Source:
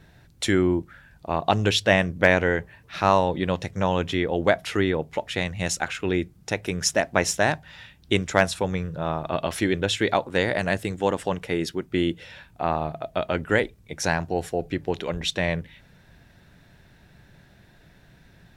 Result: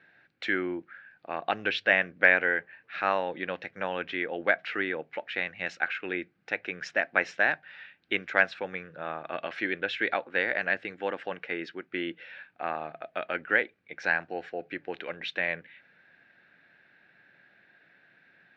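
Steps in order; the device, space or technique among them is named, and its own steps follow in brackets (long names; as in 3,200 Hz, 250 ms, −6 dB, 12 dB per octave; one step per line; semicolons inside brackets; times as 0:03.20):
phone earpiece (loudspeaker in its box 400–3,500 Hz, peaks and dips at 410 Hz −5 dB, 640 Hz −4 dB, 980 Hz −9 dB, 1,600 Hz +7 dB, 2,300 Hz +4 dB, 3,400 Hz −5 dB)
level −3.5 dB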